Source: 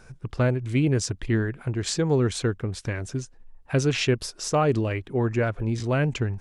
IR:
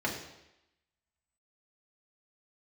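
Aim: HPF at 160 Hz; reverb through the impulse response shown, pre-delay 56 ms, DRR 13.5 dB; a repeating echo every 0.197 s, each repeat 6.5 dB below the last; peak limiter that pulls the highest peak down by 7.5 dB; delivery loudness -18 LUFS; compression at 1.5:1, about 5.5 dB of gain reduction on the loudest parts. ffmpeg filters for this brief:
-filter_complex "[0:a]highpass=160,acompressor=threshold=-33dB:ratio=1.5,alimiter=limit=-19.5dB:level=0:latency=1,aecho=1:1:197|394|591|788|985|1182:0.473|0.222|0.105|0.0491|0.0231|0.0109,asplit=2[a][b];[1:a]atrim=start_sample=2205,adelay=56[c];[b][c]afir=irnorm=-1:irlink=0,volume=-21.5dB[d];[a][d]amix=inputs=2:normalize=0,volume=13.5dB"

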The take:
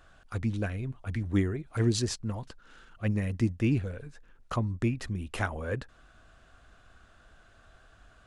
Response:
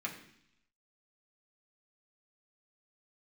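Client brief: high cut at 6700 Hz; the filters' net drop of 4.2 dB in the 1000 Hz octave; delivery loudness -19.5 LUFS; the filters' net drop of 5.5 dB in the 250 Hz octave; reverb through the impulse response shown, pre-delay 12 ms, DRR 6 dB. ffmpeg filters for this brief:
-filter_complex "[0:a]lowpass=6.7k,equalizer=f=250:t=o:g=-7,equalizer=f=1k:t=o:g=-5.5,asplit=2[a][b];[1:a]atrim=start_sample=2205,adelay=12[c];[b][c]afir=irnorm=-1:irlink=0,volume=-8dB[d];[a][d]amix=inputs=2:normalize=0,volume=13.5dB"

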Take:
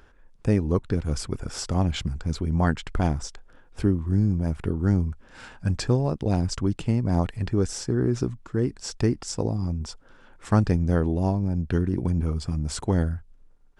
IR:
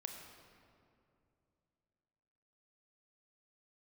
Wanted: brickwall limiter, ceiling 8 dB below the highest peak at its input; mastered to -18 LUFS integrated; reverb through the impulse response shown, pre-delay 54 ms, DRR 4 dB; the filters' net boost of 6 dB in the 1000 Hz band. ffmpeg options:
-filter_complex "[0:a]equalizer=f=1k:t=o:g=8,alimiter=limit=-15dB:level=0:latency=1,asplit=2[a][b];[1:a]atrim=start_sample=2205,adelay=54[c];[b][c]afir=irnorm=-1:irlink=0,volume=-1.5dB[d];[a][d]amix=inputs=2:normalize=0,volume=8.5dB"

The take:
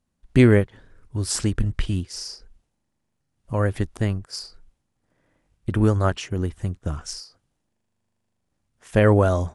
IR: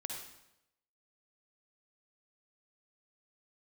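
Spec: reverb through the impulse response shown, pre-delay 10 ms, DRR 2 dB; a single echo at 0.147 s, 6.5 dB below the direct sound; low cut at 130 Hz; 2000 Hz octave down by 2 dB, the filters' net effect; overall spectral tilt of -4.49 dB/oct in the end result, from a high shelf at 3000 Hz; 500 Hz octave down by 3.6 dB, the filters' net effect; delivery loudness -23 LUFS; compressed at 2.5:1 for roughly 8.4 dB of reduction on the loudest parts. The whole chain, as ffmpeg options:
-filter_complex "[0:a]highpass=130,equalizer=f=500:t=o:g=-4.5,equalizer=f=2k:t=o:g=-4.5,highshelf=f=3k:g=6.5,acompressor=threshold=-24dB:ratio=2.5,aecho=1:1:147:0.473,asplit=2[a][b];[1:a]atrim=start_sample=2205,adelay=10[c];[b][c]afir=irnorm=-1:irlink=0,volume=-1.5dB[d];[a][d]amix=inputs=2:normalize=0,volume=3.5dB"

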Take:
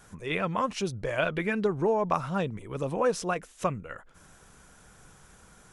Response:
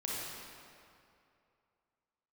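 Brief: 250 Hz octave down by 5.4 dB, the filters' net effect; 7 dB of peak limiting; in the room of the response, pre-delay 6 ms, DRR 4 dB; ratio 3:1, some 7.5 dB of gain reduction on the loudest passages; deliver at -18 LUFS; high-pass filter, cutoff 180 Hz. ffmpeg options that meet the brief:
-filter_complex "[0:a]highpass=180,equalizer=f=250:t=o:g=-5.5,acompressor=threshold=-32dB:ratio=3,alimiter=level_in=2dB:limit=-24dB:level=0:latency=1,volume=-2dB,asplit=2[a][b];[1:a]atrim=start_sample=2205,adelay=6[c];[b][c]afir=irnorm=-1:irlink=0,volume=-7.5dB[d];[a][d]amix=inputs=2:normalize=0,volume=18.5dB"

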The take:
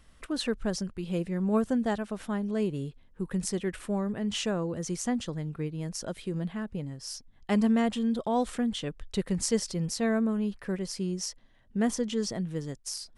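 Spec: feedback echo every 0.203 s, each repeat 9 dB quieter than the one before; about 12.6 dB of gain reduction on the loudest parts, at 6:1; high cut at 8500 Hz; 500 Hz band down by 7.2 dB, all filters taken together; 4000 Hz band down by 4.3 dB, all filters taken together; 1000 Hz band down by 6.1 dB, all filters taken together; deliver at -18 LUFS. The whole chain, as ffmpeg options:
-af "lowpass=8.5k,equalizer=f=500:t=o:g=-8,equalizer=f=1k:t=o:g=-4.5,equalizer=f=4k:t=o:g=-5.5,acompressor=threshold=-37dB:ratio=6,aecho=1:1:203|406|609|812:0.355|0.124|0.0435|0.0152,volume=22.5dB"

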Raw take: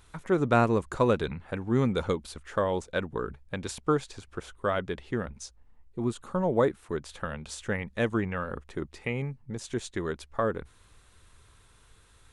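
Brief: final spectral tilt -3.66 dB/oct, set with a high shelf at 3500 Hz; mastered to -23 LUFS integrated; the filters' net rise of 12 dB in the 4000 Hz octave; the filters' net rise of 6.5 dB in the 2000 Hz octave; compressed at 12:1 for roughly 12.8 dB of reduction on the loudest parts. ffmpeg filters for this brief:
-af "equalizer=f=2k:t=o:g=5,highshelf=f=3.5k:g=7,equalizer=f=4k:t=o:g=8.5,acompressor=threshold=-30dB:ratio=12,volume=13dB"

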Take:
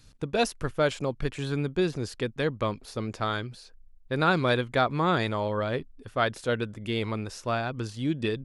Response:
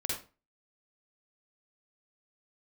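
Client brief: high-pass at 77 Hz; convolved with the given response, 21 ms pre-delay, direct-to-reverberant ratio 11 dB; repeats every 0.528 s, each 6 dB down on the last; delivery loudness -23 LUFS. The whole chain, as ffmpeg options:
-filter_complex "[0:a]highpass=77,aecho=1:1:528|1056|1584|2112|2640|3168:0.501|0.251|0.125|0.0626|0.0313|0.0157,asplit=2[a][b];[1:a]atrim=start_sample=2205,adelay=21[c];[b][c]afir=irnorm=-1:irlink=0,volume=-14.5dB[d];[a][d]amix=inputs=2:normalize=0,volume=4.5dB"

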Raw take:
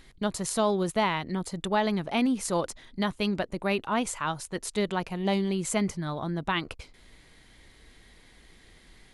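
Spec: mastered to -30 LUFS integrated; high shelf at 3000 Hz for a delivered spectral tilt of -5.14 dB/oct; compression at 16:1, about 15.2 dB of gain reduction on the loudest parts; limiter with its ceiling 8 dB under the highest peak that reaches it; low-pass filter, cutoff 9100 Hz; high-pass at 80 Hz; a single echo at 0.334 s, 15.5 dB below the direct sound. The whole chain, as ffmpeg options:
-af "highpass=80,lowpass=9.1k,highshelf=f=3k:g=-5.5,acompressor=threshold=-37dB:ratio=16,alimiter=level_in=9.5dB:limit=-24dB:level=0:latency=1,volume=-9.5dB,aecho=1:1:334:0.168,volume=13.5dB"

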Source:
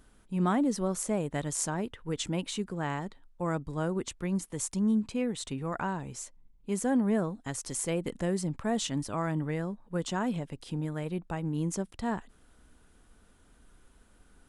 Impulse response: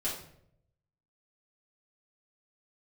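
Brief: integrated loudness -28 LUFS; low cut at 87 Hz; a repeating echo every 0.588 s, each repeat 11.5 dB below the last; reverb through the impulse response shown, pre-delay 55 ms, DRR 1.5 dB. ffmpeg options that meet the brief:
-filter_complex "[0:a]highpass=87,aecho=1:1:588|1176|1764:0.266|0.0718|0.0194,asplit=2[a][b];[1:a]atrim=start_sample=2205,adelay=55[c];[b][c]afir=irnorm=-1:irlink=0,volume=-6dB[d];[a][d]amix=inputs=2:normalize=0,volume=1dB"

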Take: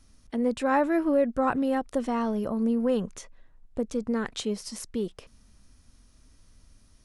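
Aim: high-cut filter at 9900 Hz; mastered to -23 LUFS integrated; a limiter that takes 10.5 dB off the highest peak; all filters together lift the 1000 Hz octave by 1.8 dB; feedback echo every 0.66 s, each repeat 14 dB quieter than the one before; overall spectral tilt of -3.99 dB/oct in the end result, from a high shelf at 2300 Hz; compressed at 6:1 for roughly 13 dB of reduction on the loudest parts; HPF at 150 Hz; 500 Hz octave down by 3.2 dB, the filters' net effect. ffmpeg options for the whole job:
-af "highpass=150,lowpass=9.9k,equalizer=f=500:t=o:g=-4.5,equalizer=f=1k:t=o:g=3,highshelf=f=2.3k:g=4,acompressor=threshold=-33dB:ratio=6,alimiter=level_in=7dB:limit=-24dB:level=0:latency=1,volume=-7dB,aecho=1:1:660|1320:0.2|0.0399,volume=17dB"

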